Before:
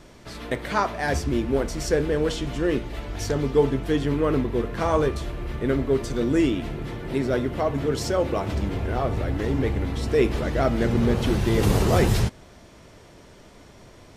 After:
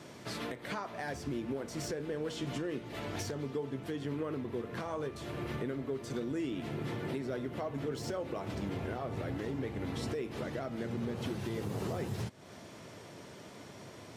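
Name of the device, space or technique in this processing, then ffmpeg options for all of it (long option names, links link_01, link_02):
podcast mastering chain: -af "highpass=frequency=100:width=0.5412,highpass=frequency=100:width=1.3066,deesser=0.75,acompressor=threshold=-34dB:ratio=3,alimiter=level_in=2.5dB:limit=-24dB:level=0:latency=1:release=293,volume=-2.5dB" -ar 48000 -c:a libmp3lame -b:a 96k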